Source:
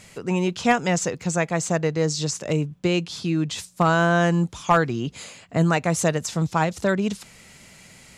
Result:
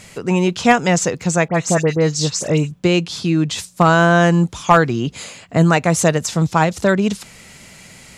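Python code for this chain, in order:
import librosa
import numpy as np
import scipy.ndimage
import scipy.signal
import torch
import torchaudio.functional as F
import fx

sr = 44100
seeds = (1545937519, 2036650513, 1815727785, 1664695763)

y = fx.dispersion(x, sr, late='highs', ms=66.0, hz=2400.0, at=(1.48, 2.73))
y = y * librosa.db_to_amplitude(6.5)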